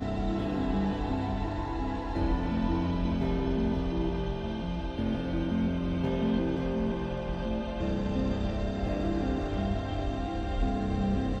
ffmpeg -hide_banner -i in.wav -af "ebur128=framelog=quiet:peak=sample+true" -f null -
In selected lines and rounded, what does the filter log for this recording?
Integrated loudness:
  I:         -31.0 LUFS
  Threshold: -41.0 LUFS
Loudness range:
  LRA:         0.9 LU
  Threshold: -51.0 LUFS
  LRA low:   -31.5 LUFS
  LRA high:  -30.6 LUFS
Sample peak:
  Peak:      -16.6 dBFS
True peak:
  Peak:      -16.6 dBFS